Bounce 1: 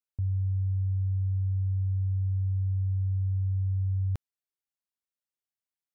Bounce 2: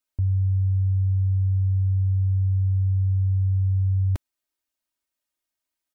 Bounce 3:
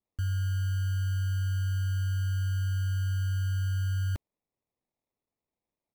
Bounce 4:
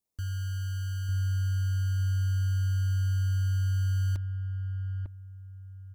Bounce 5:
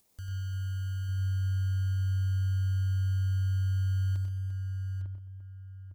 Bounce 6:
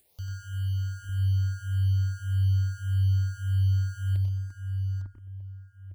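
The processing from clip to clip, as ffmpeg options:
ffmpeg -i in.wav -af "aecho=1:1:3.2:0.81,volume=6dB" out.wav
ffmpeg -i in.wav -af "acrusher=samples=29:mix=1:aa=0.000001,volume=-7.5dB" out.wav
ffmpeg -i in.wav -filter_complex "[0:a]acrossover=split=5000[link_01][link_02];[link_01]asplit=2[link_03][link_04];[link_04]adelay=900,lowpass=frequency=910:poles=1,volume=-3dB,asplit=2[link_05][link_06];[link_06]adelay=900,lowpass=frequency=910:poles=1,volume=0.26,asplit=2[link_07][link_08];[link_08]adelay=900,lowpass=frequency=910:poles=1,volume=0.26,asplit=2[link_09][link_10];[link_10]adelay=900,lowpass=frequency=910:poles=1,volume=0.26[link_11];[link_03][link_05][link_07][link_09][link_11]amix=inputs=5:normalize=0[link_12];[link_02]aeval=exprs='0.00891*sin(PI/2*2.82*val(0)/0.00891)':channel_layout=same[link_13];[link_12][link_13]amix=inputs=2:normalize=0,volume=-3.5dB" out.wav
ffmpeg -i in.wav -af "acompressor=mode=upward:threshold=-45dB:ratio=2.5,aecho=1:1:94|124|215|346|855:0.562|0.355|0.141|0.282|0.316,volume=-6.5dB" out.wav
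ffmpeg -i in.wav -filter_complex "[0:a]asplit=2[link_01][link_02];[link_02]afreqshift=1.7[link_03];[link_01][link_03]amix=inputs=2:normalize=1,volume=6dB" out.wav

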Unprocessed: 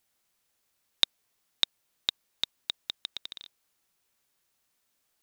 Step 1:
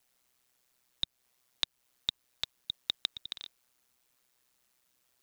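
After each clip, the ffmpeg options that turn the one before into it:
ffmpeg -i in.wav -filter_complex "[0:a]acrossover=split=130[link_01][link_02];[link_02]alimiter=limit=-11.5dB:level=0:latency=1:release=233[link_03];[link_01][link_03]amix=inputs=2:normalize=0,aeval=exprs='val(0)*sin(2*PI*63*n/s)':channel_layout=same,volume=5dB" out.wav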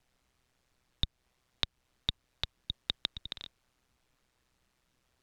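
ffmpeg -i in.wav -af "aemphasis=mode=reproduction:type=bsi,volume=3dB" out.wav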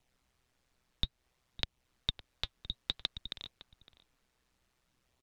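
ffmpeg -i in.wav -filter_complex "[0:a]flanger=delay=0.3:depth=4.3:regen=-63:speed=0.58:shape=sinusoidal,asplit=2[link_01][link_02];[link_02]adelay=559.8,volume=-15dB,highshelf=frequency=4000:gain=-12.6[link_03];[link_01][link_03]amix=inputs=2:normalize=0,volume=2.5dB" out.wav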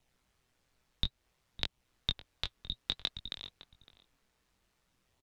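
ffmpeg -i in.wav -filter_complex "[0:a]asplit=2[link_01][link_02];[link_02]adelay=21,volume=-6dB[link_03];[link_01][link_03]amix=inputs=2:normalize=0" out.wav

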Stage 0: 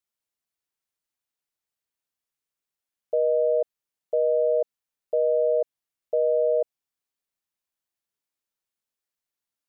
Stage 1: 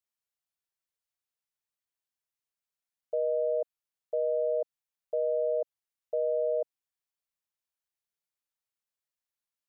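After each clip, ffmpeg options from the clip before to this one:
ffmpeg -i in.wav -af "equalizer=frequency=290:width=1.8:gain=-9,volume=-5dB" out.wav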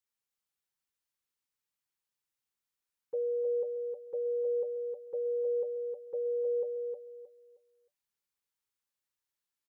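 ffmpeg -i in.wav -filter_complex "[0:a]asuperstop=centerf=660:order=20:qfactor=4.5,asplit=2[link_01][link_02];[link_02]aecho=0:1:312|624|936|1248:0.596|0.155|0.0403|0.0105[link_03];[link_01][link_03]amix=inputs=2:normalize=0" out.wav

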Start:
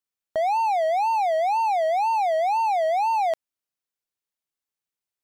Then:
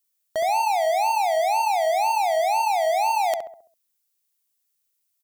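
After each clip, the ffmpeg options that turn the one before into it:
ffmpeg -i in.wav -filter_complex "[0:a]crystalizer=i=5:c=0,asplit=2[link_01][link_02];[link_02]adelay=67,lowpass=frequency=1200:poles=1,volume=-4.5dB,asplit=2[link_03][link_04];[link_04]adelay=67,lowpass=frequency=1200:poles=1,volume=0.48,asplit=2[link_05][link_06];[link_06]adelay=67,lowpass=frequency=1200:poles=1,volume=0.48,asplit=2[link_07][link_08];[link_08]adelay=67,lowpass=frequency=1200:poles=1,volume=0.48,asplit=2[link_09][link_10];[link_10]adelay=67,lowpass=frequency=1200:poles=1,volume=0.48,asplit=2[link_11][link_12];[link_12]adelay=67,lowpass=frequency=1200:poles=1,volume=0.48[link_13];[link_03][link_05][link_07][link_09][link_11][link_13]amix=inputs=6:normalize=0[link_14];[link_01][link_14]amix=inputs=2:normalize=0,volume=-2dB" out.wav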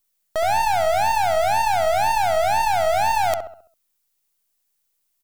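ffmpeg -i in.wav -af "aeval=exprs='if(lt(val(0),0),0.447*val(0),val(0))':channel_layout=same,volume=4.5dB" out.wav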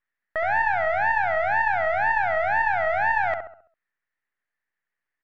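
ffmpeg -i in.wav -af "lowpass=frequency=1800:width_type=q:width=7,volume=-6.5dB" out.wav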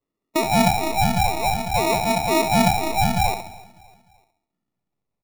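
ffmpeg -i in.wav -af "afftfilt=real='re*pow(10,14/40*sin(2*PI*(1.9*log(max(b,1)*sr/1024/100)/log(2)-(-0.51)*(pts-256)/sr)))':imag='im*pow(10,14/40*sin(2*PI*(1.9*log(max(b,1)*sr/1024/100)/log(2)-(-0.51)*(pts-256)/sr)))':win_size=1024:overlap=0.75,acrusher=samples=28:mix=1:aa=0.000001,aecho=1:1:300|600|900:0.0708|0.0319|0.0143" out.wav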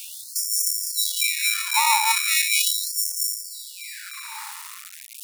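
ffmpeg -i in.wav -af "aeval=exprs='val(0)+0.5*0.0355*sgn(val(0))':channel_layout=same,equalizer=frequency=9700:width=1.1:gain=6,afftfilt=real='re*gte(b*sr/1024,810*pow(5400/810,0.5+0.5*sin(2*PI*0.39*pts/sr)))':imag='im*gte(b*sr/1024,810*pow(5400/810,0.5+0.5*sin(2*PI*0.39*pts/sr)))':win_size=1024:overlap=0.75,volume=4dB" out.wav

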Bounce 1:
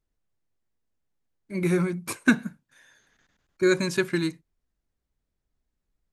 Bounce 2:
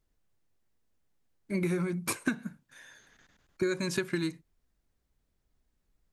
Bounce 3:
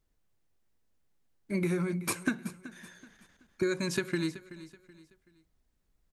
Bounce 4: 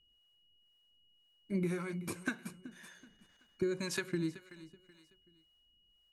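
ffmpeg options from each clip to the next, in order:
ffmpeg -i in.wav -af "acompressor=threshold=-31dB:ratio=10,volume=4dB" out.wav
ffmpeg -i in.wav -af "aecho=1:1:378|756|1134:0.158|0.0555|0.0194" out.wav
ffmpeg -i in.wav -filter_complex "[0:a]acrossover=split=480[link_01][link_02];[link_01]aeval=exprs='val(0)*(1-0.7/2+0.7/2*cos(2*PI*1.9*n/s))':channel_layout=same[link_03];[link_02]aeval=exprs='val(0)*(1-0.7/2-0.7/2*cos(2*PI*1.9*n/s))':channel_layout=same[link_04];[link_03][link_04]amix=inputs=2:normalize=0,aeval=exprs='val(0)+0.000447*sin(2*PI*2900*n/s)':channel_layout=same,volume=-2dB" out.wav

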